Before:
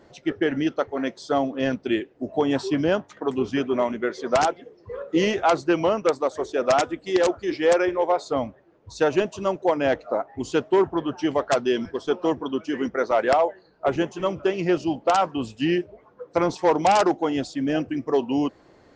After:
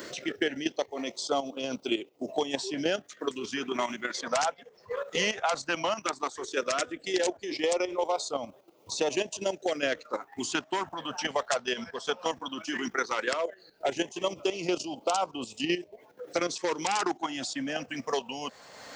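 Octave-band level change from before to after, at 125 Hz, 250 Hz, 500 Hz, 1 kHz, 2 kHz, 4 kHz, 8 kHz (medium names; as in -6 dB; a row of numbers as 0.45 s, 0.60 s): -13.5 dB, -10.5 dB, -9.0 dB, -7.5 dB, -2.5 dB, +1.5 dB, +3.5 dB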